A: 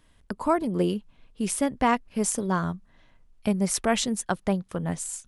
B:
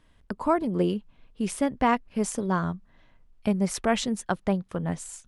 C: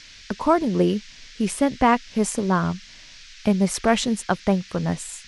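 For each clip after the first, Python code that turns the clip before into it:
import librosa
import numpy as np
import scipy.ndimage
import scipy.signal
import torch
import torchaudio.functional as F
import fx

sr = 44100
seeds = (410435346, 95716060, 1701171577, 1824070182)

y1 = fx.lowpass(x, sr, hz=4000.0, slope=6)
y2 = fx.dmg_noise_band(y1, sr, seeds[0], low_hz=1600.0, high_hz=6000.0, level_db=-51.0)
y2 = y2 * librosa.db_to_amplitude(5.0)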